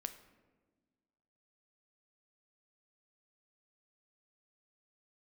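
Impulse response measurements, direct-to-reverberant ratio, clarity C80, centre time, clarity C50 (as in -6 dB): 8.5 dB, 14.0 dB, 10 ms, 12.0 dB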